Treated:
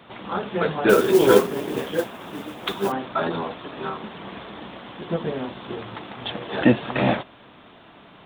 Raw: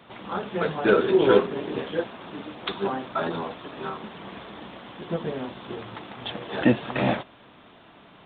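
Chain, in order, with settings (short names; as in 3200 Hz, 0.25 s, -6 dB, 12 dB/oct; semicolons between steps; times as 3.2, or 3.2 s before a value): 0.89–2.92 modulation noise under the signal 19 dB; gain +3 dB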